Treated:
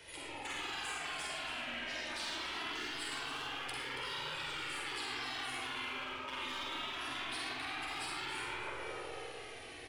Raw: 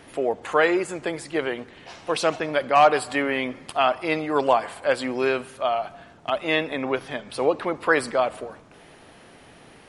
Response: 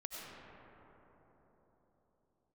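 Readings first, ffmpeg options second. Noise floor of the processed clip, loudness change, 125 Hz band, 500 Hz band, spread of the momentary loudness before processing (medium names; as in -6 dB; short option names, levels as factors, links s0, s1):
-49 dBFS, -16.0 dB, -16.0 dB, -26.0 dB, 10 LU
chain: -filter_complex "[0:a]equalizer=f=210:t=o:w=1.7:g=-6,acrossover=split=130|290|980|3500[s0][s1][s2][s3][s4];[s0]acompressor=threshold=0.00126:ratio=4[s5];[s1]acompressor=threshold=0.00316:ratio=4[s6];[s2]acompressor=threshold=0.0355:ratio=4[s7];[s3]acompressor=threshold=0.0355:ratio=4[s8];[s4]acompressor=threshold=0.00631:ratio=4[s9];[s5][s6][s7][s8][s9]amix=inputs=5:normalize=0[s10];[1:a]atrim=start_sample=2205,asetrate=70560,aresample=44100[s11];[s10][s11]afir=irnorm=-1:irlink=0,asplit=2[s12][s13];[s13]asoftclip=type=hard:threshold=0.0224,volume=0.376[s14];[s12][s14]amix=inputs=2:normalize=0,highshelf=f=1800:t=q:w=1.5:g=6.5,afftfilt=real='re*lt(hypot(re,im),0.0501)':imag='im*lt(hypot(re,im),0.0501)':win_size=1024:overlap=0.75,areverse,acompressor=threshold=0.0158:ratio=10,areverse,aeval=exprs='0.0398*(cos(1*acos(clip(val(0)/0.0398,-1,1)))-cos(1*PI/2))+0.00562*(cos(2*acos(clip(val(0)/0.0398,-1,1)))-cos(2*PI/2))+0.000891*(cos(8*acos(clip(val(0)/0.0398,-1,1)))-cos(8*PI/2))':c=same,flanger=delay=2:depth=1.3:regen=-19:speed=0.23:shape=triangular,aecho=1:1:46.65|279.9:0.631|0.282,volume=1.19"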